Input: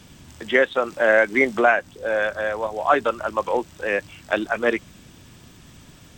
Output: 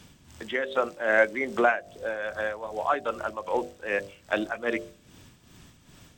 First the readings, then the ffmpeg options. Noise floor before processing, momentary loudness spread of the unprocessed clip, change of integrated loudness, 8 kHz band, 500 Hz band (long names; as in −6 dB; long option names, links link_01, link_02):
−48 dBFS, 9 LU, −6.5 dB, can't be measured, −6.5 dB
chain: -af "bandreject=frequency=49.44:width_type=h:width=4,bandreject=frequency=98.88:width_type=h:width=4,bandreject=frequency=148.32:width_type=h:width=4,bandreject=frequency=197.76:width_type=h:width=4,bandreject=frequency=247.2:width_type=h:width=4,bandreject=frequency=296.64:width_type=h:width=4,bandreject=frequency=346.08:width_type=h:width=4,bandreject=frequency=395.52:width_type=h:width=4,bandreject=frequency=444.96:width_type=h:width=4,bandreject=frequency=494.4:width_type=h:width=4,bandreject=frequency=543.84:width_type=h:width=4,bandreject=frequency=593.28:width_type=h:width=4,bandreject=frequency=642.72:width_type=h:width=4,bandreject=frequency=692.16:width_type=h:width=4,bandreject=frequency=741.6:width_type=h:width=4,tremolo=f=2.5:d=0.64,volume=-3dB"